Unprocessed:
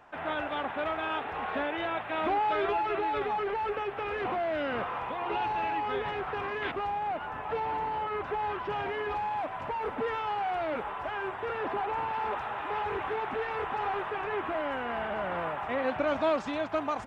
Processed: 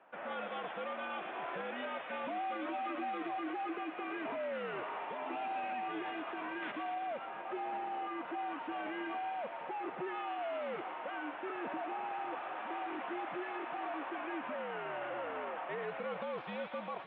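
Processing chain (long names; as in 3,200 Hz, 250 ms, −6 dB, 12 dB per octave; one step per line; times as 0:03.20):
single-sideband voice off tune −84 Hz 310–3,500 Hz
brickwall limiter −25 dBFS, peak gain reduction 8.5 dB
delay with a high-pass on its return 117 ms, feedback 76%, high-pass 2,200 Hz, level −4.5 dB
level −6.5 dB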